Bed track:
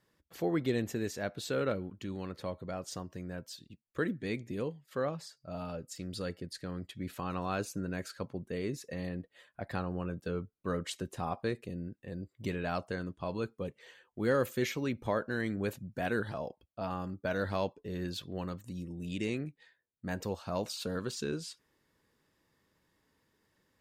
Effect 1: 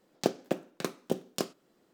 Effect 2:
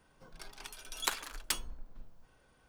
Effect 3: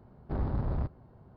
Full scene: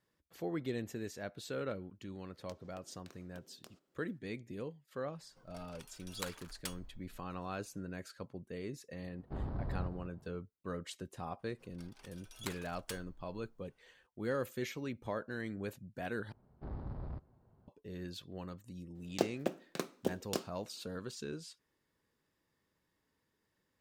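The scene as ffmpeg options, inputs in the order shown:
-filter_complex "[1:a]asplit=2[a][b];[2:a]asplit=2[c][d];[3:a]asplit=2[e][f];[0:a]volume=-7dB[g];[a]acompressor=threshold=-42dB:ratio=6:attack=3.2:release=140:knee=1:detection=peak[h];[e]aecho=1:1:197:0.316[i];[g]asplit=2[j][k];[j]atrim=end=16.324[l];[f]atrim=end=1.36,asetpts=PTS-STARTPTS,volume=-12dB[m];[k]atrim=start=17.676[n];[h]atrim=end=1.93,asetpts=PTS-STARTPTS,volume=-12dB,afade=t=in:d=0.004:c=hsin,afade=t=out:st=1.926:d=0.004:c=hsin,adelay=2260[o];[c]atrim=end=2.68,asetpts=PTS-STARTPTS,volume=-9.5dB,afade=t=in:d=0.004:c=hsin,afade=t=out:st=2.676:d=0.004:c=hsin,adelay=5150[p];[i]atrim=end=1.36,asetpts=PTS-STARTPTS,volume=-8dB,afade=t=in:d=0.004:c=hsin,afade=t=out:st=1.356:d=0.004:c=hsin,adelay=9010[q];[d]atrim=end=2.68,asetpts=PTS-STARTPTS,volume=-11.5dB,afade=t=in:d=0.004:c=hsin,afade=t=out:st=2.676:d=0.004:c=hsin,adelay=11390[r];[b]atrim=end=1.93,asetpts=PTS-STARTPTS,volume=-4.5dB,afade=t=in:d=0.004:c=hsin,afade=t=out:st=1.926:d=0.004:c=hsin,adelay=18950[s];[l][m]acrossfade=d=0.004:c1=hsin:c2=hsin[t];[t][n]acrossfade=d=0.004:c1=hsin:c2=hsin[u];[u][o][p][q][r][s]amix=inputs=6:normalize=0"

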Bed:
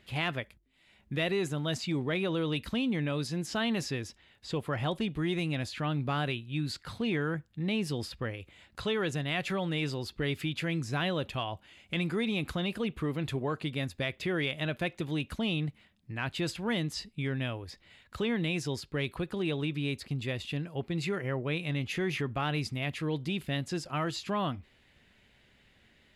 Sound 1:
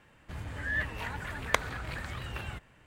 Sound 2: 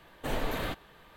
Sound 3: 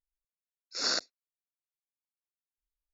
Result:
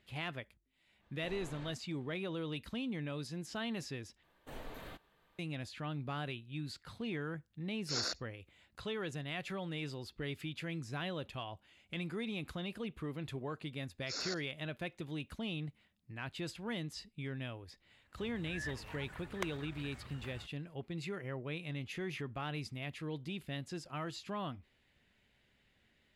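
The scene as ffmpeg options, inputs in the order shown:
-filter_complex "[2:a]asplit=2[a][b];[3:a]asplit=2[c][d];[0:a]volume=-9dB[e];[a]lowpass=f=7.3k:w=0.5412,lowpass=f=7.3k:w=1.3066[f];[c]alimiter=limit=-22dB:level=0:latency=1:release=192[g];[d]acompressor=threshold=-33dB:ratio=6:attack=3.2:release=140:knee=1:detection=peak[h];[1:a]dynaudnorm=f=190:g=7:m=5dB[i];[e]asplit=2[j][k];[j]atrim=end=4.234[l];[b]atrim=end=1.16,asetpts=PTS-STARTPTS,volume=-15.5dB[m];[k]atrim=start=5.386[n];[f]atrim=end=1.16,asetpts=PTS-STARTPTS,volume=-17.5dB,afade=t=in:d=0.05,afade=t=out:st=1.11:d=0.05,adelay=990[o];[g]atrim=end=2.93,asetpts=PTS-STARTPTS,volume=-3dB,afade=t=in:d=0.004:c=hsin,afade=t=out:st=2.926:d=0.004:c=hsin,adelay=314874S[p];[h]atrim=end=2.93,asetpts=PTS-STARTPTS,volume=-3.5dB,afade=t=in:d=0.004:c=hsin,afade=t=out:st=2.926:d=0.004:c=hsin,adelay=13350[q];[i]atrim=end=2.86,asetpts=PTS-STARTPTS,volume=-15.5dB,afade=t=in:d=0.004:c=hsin,afade=t=out:st=2.856:d=0.004:c=hsin,adelay=17880[r];[l][m]acrossfade=d=0.004:c1=hsin:c2=hsin[s];[s][n]acrossfade=d=0.004:c1=hsin:c2=hsin[t];[t][o][p][q][r]amix=inputs=5:normalize=0"

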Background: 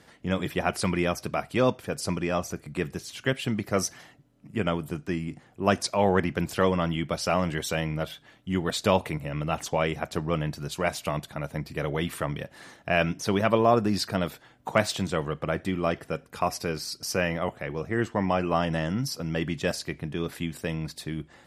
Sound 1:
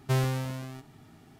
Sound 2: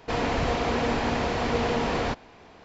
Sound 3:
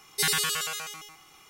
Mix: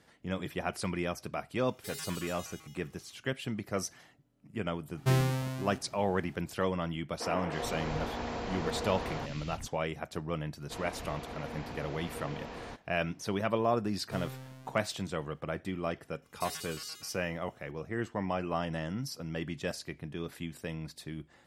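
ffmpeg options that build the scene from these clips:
-filter_complex "[3:a]asplit=2[a][b];[1:a]asplit=2[c][d];[2:a]asplit=2[e][f];[0:a]volume=-8dB[g];[a]asoftclip=type=tanh:threshold=-26.5dB[h];[e]acrossover=split=210|2400[i][j][k];[k]adelay=310[l];[i]adelay=410[m];[m][j][l]amix=inputs=3:normalize=0[n];[d]aeval=exprs='if(lt(val(0),0),0.708*val(0),val(0))':c=same[o];[h]atrim=end=1.49,asetpts=PTS-STARTPTS,volume=-13.5dB,afade=t=in:d=0.004:c=hsin,afade=t=out:st=1.486:d=0.004:c=hsin,adelay=1660[p];[c]atrim=end=1.39,asetpts=PTS-STARTPTS,volume=-0.5dB,afade=t=in:d=0.004:c=hsin,afade=t=out:st=1.386:d=0.004:c=hsin,adelay=219177S[q];[n]atrim=end=2.64,asetpts=PTS-STARTPTS,volume=-10dB,afade=t=in:d=0.004:c=hsin,afade=t=out:st=2.636:d=0.004:c=hsin,adelay=7120[r];[f]atrim=end=2.64,asetpts=PTS-STARTPTS,volume=-17dB,afade=t=in:d=0.004:c=hsin,afade=t=out:st=2.636:d=0.004:c=hsin,adelay=10620[s];[o]atrim=end=1.39,asetpts=PTS-STARTPTS,volume=-13.5dB,afade=t=in:d=0.004:c=hsin,afade=t=out:st=1.386:d=0.004:c=hsin,adelay=14020[t];[b]atrim=end=1.49,asetpts=PTS-STARTPTS,volume=-18dB,afade=t=in:d=0.004:c=hsin,afade=t=out:st=1.486:d=0.004:c=hsin,adelay=16220[u];[g][p][q][r][s][t][u]amix=inputs=7:normalize=0"

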